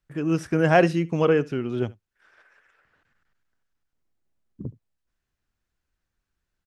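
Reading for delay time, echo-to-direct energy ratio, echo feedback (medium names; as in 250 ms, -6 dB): 72 ms, -22.0 dB, no regular repeats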